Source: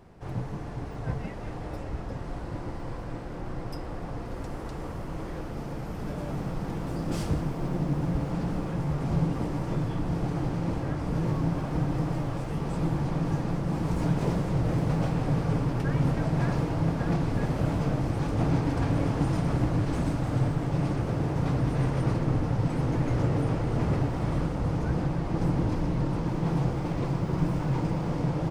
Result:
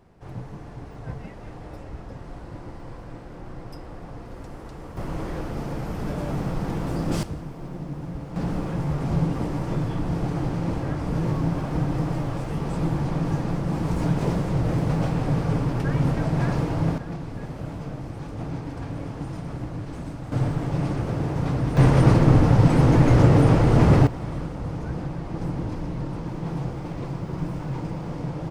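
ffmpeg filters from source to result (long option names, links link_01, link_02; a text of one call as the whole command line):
ffmpeg -i in.wav -af "asetnsamples=nb_out_samples=441:pad=0,asendcmd='4.97 volume volume 5dB;7.23 volume volume -5.5dB;8.36 volume volume 3dB;16.98 volume volume -6.5dB;20.32 volume volume 2dB;21.77 volume volume 10.5dB;24.07 volume volume -2.5dB',volume=-3dB" out.wav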